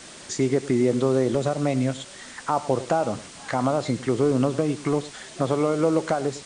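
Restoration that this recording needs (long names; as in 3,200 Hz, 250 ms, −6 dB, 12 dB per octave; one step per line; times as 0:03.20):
broadband denoise 27 dB, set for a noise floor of −43 dBFS
echo removal 103 ms −17 dB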